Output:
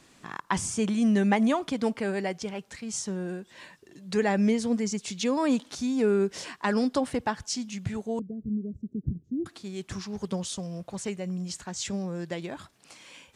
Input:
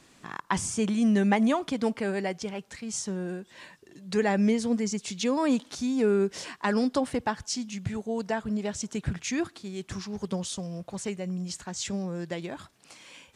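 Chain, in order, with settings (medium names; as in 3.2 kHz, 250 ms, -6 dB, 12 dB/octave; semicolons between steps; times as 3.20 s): 8.19–9.46 s: inverse Chebyshev low-pass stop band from 890 Hz, stop band 50 dB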